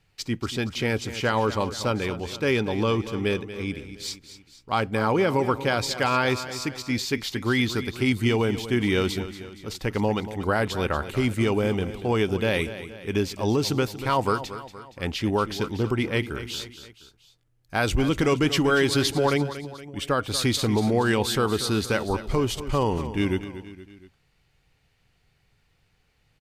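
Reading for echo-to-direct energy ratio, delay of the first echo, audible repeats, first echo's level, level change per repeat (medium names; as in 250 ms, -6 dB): -12.0 dB, 235 ms, 3, -13.0 dB, -6.0 dB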